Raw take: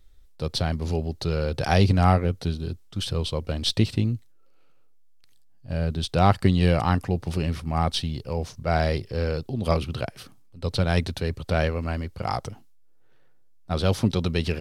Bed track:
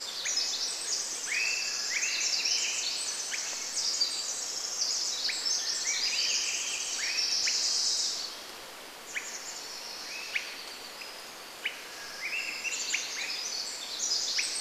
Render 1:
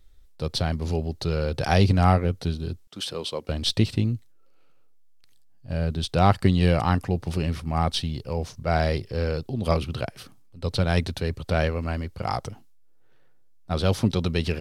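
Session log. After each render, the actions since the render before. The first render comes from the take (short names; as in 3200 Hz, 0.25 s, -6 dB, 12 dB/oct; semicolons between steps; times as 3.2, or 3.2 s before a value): 2.87–3.49 HPF 280 Hz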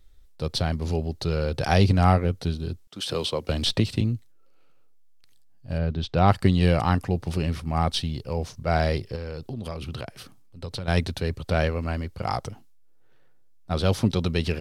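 3.09–4.01 three-band squash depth 70%; 5.78–6.28 air absorption 150 m; 9.15–10.88 compressor 5:1, threshold -29 dBFS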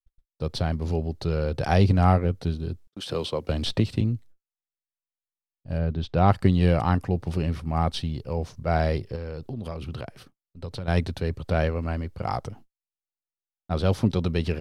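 high shelf 2300 Hz -7.5 dB; gate -45 dBFS, range -48 dB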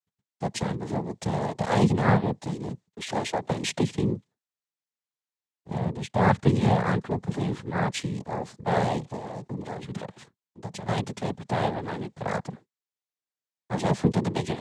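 noise vocoder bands 6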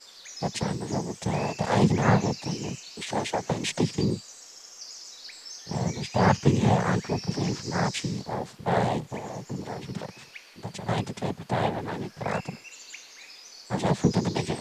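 add bed track -12 dB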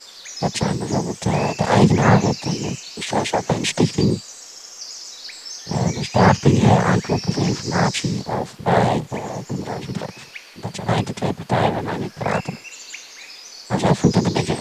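gain +8 dB; limiter -2 dBFS, peak gain reduction 2.5 dB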